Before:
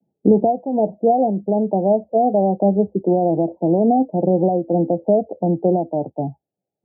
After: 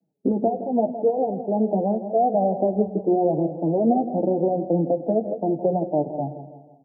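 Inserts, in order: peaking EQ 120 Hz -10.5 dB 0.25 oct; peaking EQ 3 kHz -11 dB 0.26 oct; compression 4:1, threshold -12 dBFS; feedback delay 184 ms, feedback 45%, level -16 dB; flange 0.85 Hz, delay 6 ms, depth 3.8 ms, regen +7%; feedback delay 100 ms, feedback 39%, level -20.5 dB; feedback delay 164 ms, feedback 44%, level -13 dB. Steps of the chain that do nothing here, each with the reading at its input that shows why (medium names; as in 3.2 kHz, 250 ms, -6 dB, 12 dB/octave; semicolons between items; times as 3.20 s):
peaking EQ 3 kHz: input has nothing above 910 Hz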